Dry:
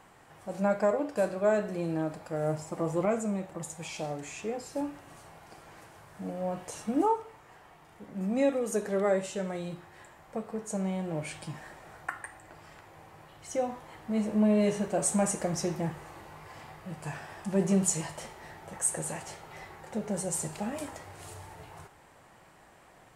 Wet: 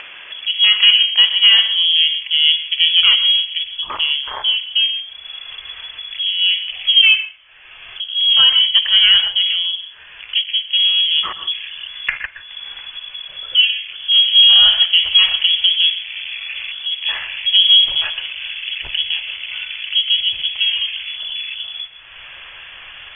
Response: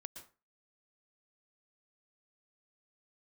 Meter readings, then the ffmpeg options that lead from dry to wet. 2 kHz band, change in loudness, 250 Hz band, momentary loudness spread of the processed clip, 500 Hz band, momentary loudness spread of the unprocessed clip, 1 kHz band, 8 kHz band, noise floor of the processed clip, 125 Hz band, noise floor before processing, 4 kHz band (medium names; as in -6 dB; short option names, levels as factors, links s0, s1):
+22.5 dB, +19.0 dB, under -25 dB, 19 LU, under -15 dB, 20 LU, +1.0 dB, under -40 dB, -39 dBFS, under -15 dB, -57 dBFS, +42.0 dB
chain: -filter_complex "[0:a]afwtdn=0.00794,aemphasis=mode=production:type=cd,acontrast=52,lowpass=f=3000:t=q:w=0.5098,lowpass=f=3000:t=q:w=0.6013,lowpass=f=3000:t=q:w=0.9,lowpass=f=3000:t=q:w=2.563,afreqshift=-3500,asubboost=boost=9:cutoff=82,asplit=2[s0][s1];[1:a]atrim=start_sample=2205,afade=t=out:st=0.23:d=0.01,atrim=end_sample=10584[s2];[s1][s2]afir=irnorm=-1:irlink=0,volume=1.41[s3];[s0][s3]amix=inputs=2:normalize=0,acompressor=mode=upward:threshold=0.0562:ratio=2.5,alimiter=level_in=2.37:limit=0.891:release=50:level=0:latency=1,volume=0.891"